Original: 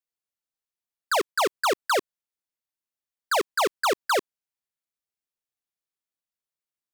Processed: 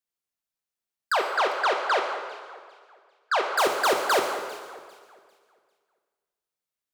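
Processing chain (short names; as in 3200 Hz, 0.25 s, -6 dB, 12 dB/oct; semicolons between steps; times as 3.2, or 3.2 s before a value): 1.12–3.44 BPF 510–3600 Hz; echo with dull and thin repeats by turns 0.199 s, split 2100 Hz, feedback 54%, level -12 dB; plate-style reverb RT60 1.5 s, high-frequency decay 0.85×, DRR 3 dB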